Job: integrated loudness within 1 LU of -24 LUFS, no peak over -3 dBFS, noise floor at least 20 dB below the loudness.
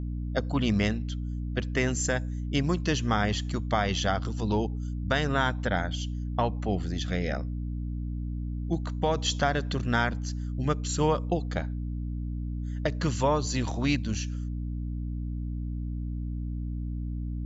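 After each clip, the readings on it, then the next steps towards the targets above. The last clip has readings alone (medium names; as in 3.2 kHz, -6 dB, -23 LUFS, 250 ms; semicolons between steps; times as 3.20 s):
hum 60 Hz; highest harmonic 300 Hz; hum level -30 dBFS; loudness -29.5 LUFS; peak level -12.5 dBFS; loudness target -24.0 LUFS
-> de-hum 60 Hz, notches 5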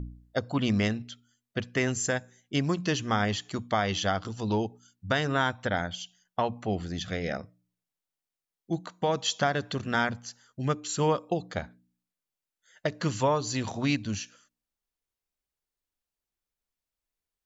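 hum not found; loudness -30.0 LUFS; peak level -13.5 dBFS; loudness target -24.0 LUFS
-> trim +6 dB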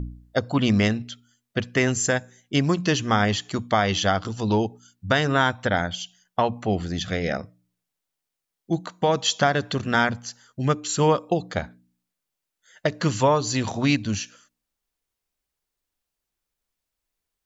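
loudness -24.0 LUFS; peak level -7.5 dBFS; noise floor -84 dBFS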